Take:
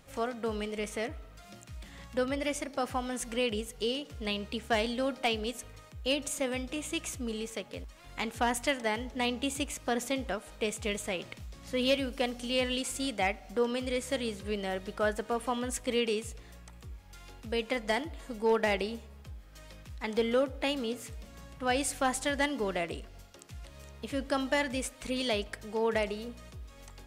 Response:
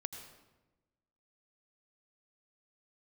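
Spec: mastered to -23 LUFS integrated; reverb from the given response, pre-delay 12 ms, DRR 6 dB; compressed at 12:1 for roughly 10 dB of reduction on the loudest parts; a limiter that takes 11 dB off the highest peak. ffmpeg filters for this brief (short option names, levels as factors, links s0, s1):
-filter_complex "[0:a]acompressor=threshold=0.0224:ratio=12,alimiter=level_in=2.11:limit=0.0631:level=0:latency=1,volume=0.473,asplit=2[s0][s1];[1:a]atrim=start_sample=2205,adelay=12[s2];[s1][s2]afir=irnorm=-1:irlink=0,volume=0.596[s3];[s0][s3]amix=inputs=2:normalize=0,volume=7.5"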